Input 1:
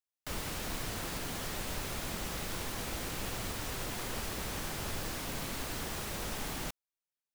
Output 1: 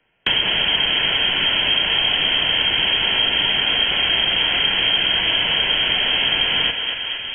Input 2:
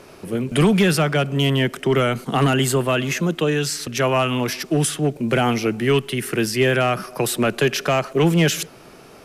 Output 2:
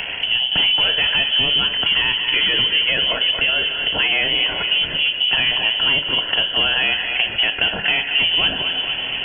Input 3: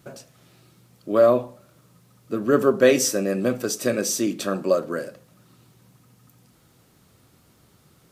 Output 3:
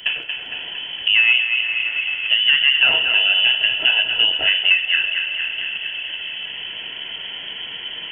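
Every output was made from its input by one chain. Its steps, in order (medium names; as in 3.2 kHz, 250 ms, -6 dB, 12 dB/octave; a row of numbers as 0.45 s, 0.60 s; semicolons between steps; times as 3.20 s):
band-stop 2 kHz, Q 6.6; two-slope reverb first 0.4 s, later 4.4 s, from -19 dB, DRR 8 dB; waveshaping leveller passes 1; compression 1.5:1, threshold -36 dBFS; frequency inversion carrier 3.2 kHz; thinning echo 229 ms, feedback 49%, high-pass 490 Hz, level -9 dB; three bands compressed up and down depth 70%; normalise loudness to -16 LUFS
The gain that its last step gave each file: +17.0 dB, +4.5 dB, +9.5 dB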